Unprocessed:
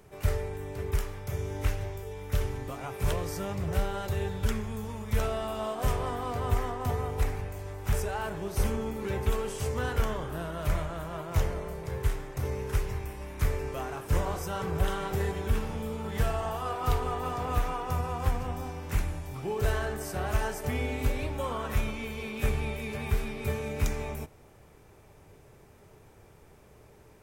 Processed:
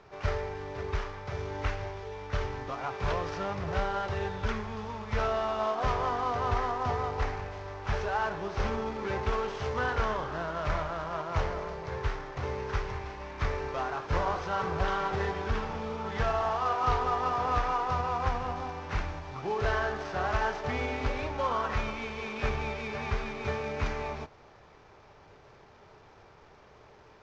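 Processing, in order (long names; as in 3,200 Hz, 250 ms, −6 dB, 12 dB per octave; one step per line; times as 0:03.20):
variable-slope delta modulation 32 kbit/s
parametric band 1,100 Hz +11 dB 2.4 octaves
level −4.5 dB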